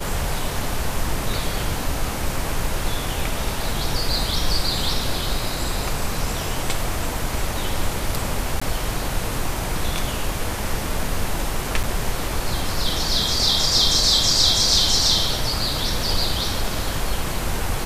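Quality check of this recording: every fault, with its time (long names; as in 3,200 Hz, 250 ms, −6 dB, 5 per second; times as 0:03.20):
0:08.60–0:08.62: drop-out 15 ms
0:11.83–0:11.84: drop-out 6.9 ms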